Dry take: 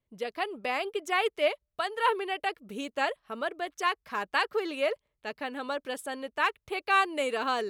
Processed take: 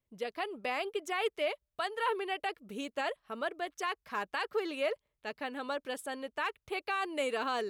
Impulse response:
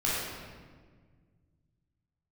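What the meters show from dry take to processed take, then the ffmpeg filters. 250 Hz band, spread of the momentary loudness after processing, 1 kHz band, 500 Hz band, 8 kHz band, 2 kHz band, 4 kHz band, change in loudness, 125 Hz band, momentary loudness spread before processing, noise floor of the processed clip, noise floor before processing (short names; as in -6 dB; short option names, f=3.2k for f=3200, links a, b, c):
-3.5 dB, 6 LU, -6.0 dB, -4.0 dB, -3.5 dB, -6.0 dB, -5.0 dB, -5.5 dB, n/a, 10 LU, under -85 dBFS, -84 dBFS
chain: -af "alimiter=limit=-20dB:level=0:latency=1:release=19,volume=-3dB"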